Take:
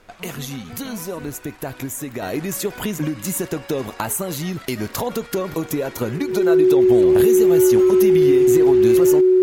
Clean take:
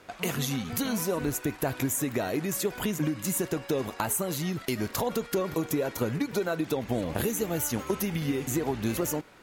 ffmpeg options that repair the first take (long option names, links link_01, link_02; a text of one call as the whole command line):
ffmpeg -i in.wav -af "bandreject=frequency=370:width=30,agate=range=-21dB:threshold=-29dB,asetnsamples=nb_out_samples=441:pad=0,asendcmd='2.22 volume volume -5dB',volume=0dB" out.wav